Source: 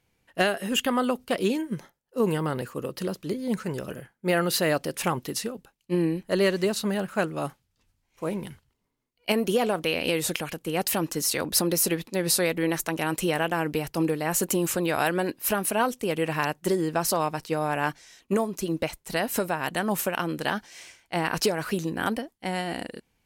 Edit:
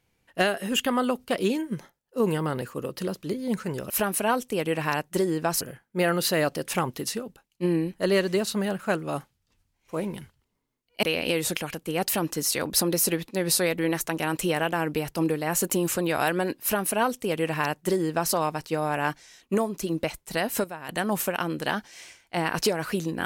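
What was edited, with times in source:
0:09.32–0:09.82: remove
0:15.41–0:17.12: duplicate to 0:03.90
0:19.43–0:19.68: clip gain −9.5 dB

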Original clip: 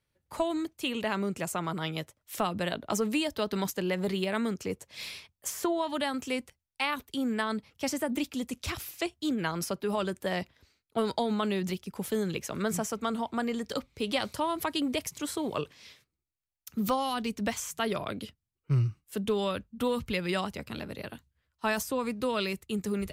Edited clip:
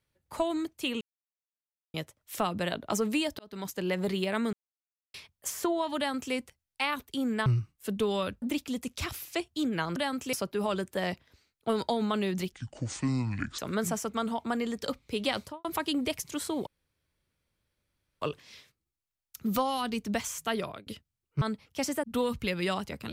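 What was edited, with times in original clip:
0:01.01–0:01.94: silence
0:03.39–0:03.90: fade in
0:04.53–0:05.14: silence
0:05.97–0:06.34: duplicate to 0:09.62
0:07.46–0:08.08: swap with 0:18.74–0:19.70
0:11.81–0:12.46: play speed 61%
0:14.24–0:14.52: fade out and dull
0:15.54: splice in room tone 1.55 s
0:17.77–0:18.19: fade out equal-power

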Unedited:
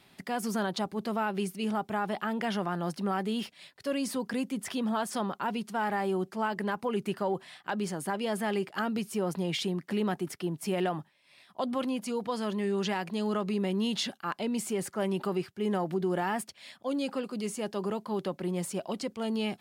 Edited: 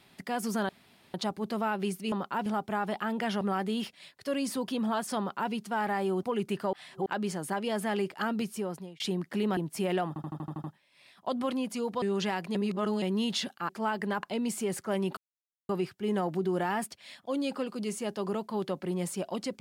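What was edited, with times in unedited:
0:00.69: splice in room tone 0.45 s
0:02.62–0:03.00: remove
0:04.27–0:04.71: remove
0:05.21–0:05.55: duplicate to 0:01.67
0:06.26–0:06.80: move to 0:14.32
0:07.30–0:07.63: reverse
0:09.03–0:09.57: fade out
0:10.14–0:10.45: remove
0:10.96: stutter 0.08 s, 8 plays
0:12.34–0:12.65: remove
0:13.18–0:13.65: reverse
0:15.26: splice in silence 0.52 s

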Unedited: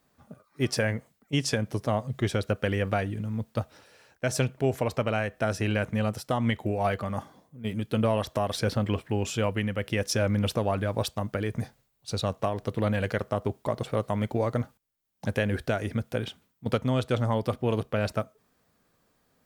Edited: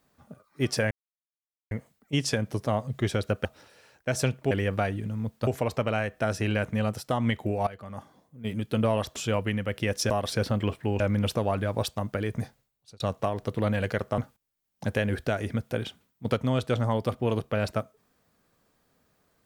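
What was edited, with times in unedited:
0:00.91: splice in silence 0.80 s
0:02.65–0:03.61: move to 0:04.67
0:06.87–0:07.73: fade in, from −17 dB
0:08.36–0:09.26: move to 0:10.20
0:11.63–0:12.20: fade out
0:13.38–0:14.59: remove

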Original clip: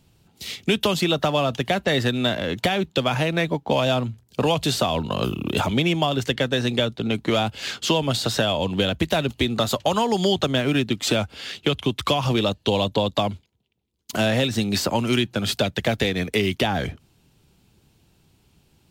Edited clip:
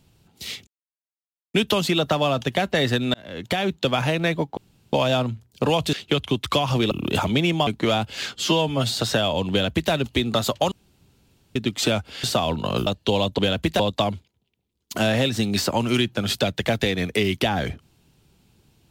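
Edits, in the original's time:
0:00.67: splice in silence 0.87 s
0:02.27–0:02.80: fade in
0:03.70: splice in room tone 0.36 s
0:04.70–0:05.33: swap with 0:11.48–0:12.46
0:06.09–0:07.12: remove
0:07.80–0:08.21: time-stretch 1.5×
0:08.75–0:09.16: duplicate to 0:12.98
0:09.96–0:10.80: fill with room tone

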